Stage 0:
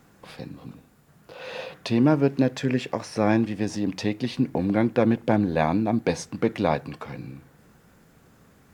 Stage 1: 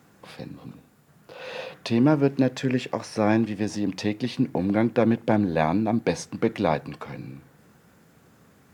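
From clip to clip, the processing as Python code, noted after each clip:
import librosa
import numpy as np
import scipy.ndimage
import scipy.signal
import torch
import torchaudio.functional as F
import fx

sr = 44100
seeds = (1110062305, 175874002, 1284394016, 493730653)

y = scipy.signal.sosfilt(scipy.signal.butter(2, 81.0, 'highpass', fs=sr, output='sos'), x)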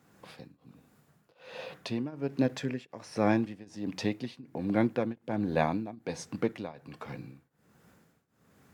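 y = fx.tremolo_shape(x, sr, shape='triangle', hz=1.3, depth_pct=95)
y = fx.end_taper(y, sr, db_per_s=520.0)
y = F.gain(torch.from_numpy(y), -3.5).numpy()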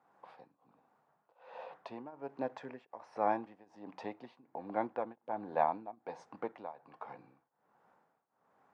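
y = fx.bandpass_q(x, sr, hz=860.0, q=2.7)
y = F.gain(torch.from_numpy(y), 3.0).numpy()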